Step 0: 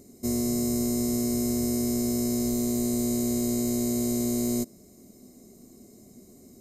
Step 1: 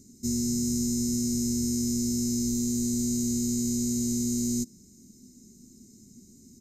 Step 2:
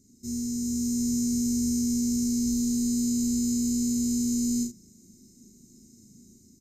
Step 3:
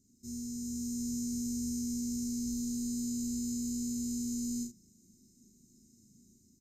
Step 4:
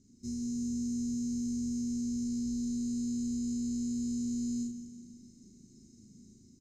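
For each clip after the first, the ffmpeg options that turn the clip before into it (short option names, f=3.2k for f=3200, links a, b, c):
-af "firequalizer=gain_entry='entry(230,0);entry(640,-26);entry(1400,-15);entry(6100,7);entry(9700,-7)':delay=0.05:min_phase=1"
-af "aecho=1:1:37.9|75.8:0.794|0.398,dynaudnorm=f=530:g=3:m=5dB,volume=-8.5dB"
-af "equalizer=f=990:t=o:w=2.3:g=-7.5,volume=-8dB"
-filter_complex "[0:a]lowpass=5.1k,acompressor=threshold=-41dB:ratio=10,asplit=2[a][b];[b]aecho=0:1:167|334|501|668|835|1002:0.251|0.136|0.0732|0.0396|0.0214|0.0115[c];[a][c]amix=inputs=2:normalize=0,volume=7dB"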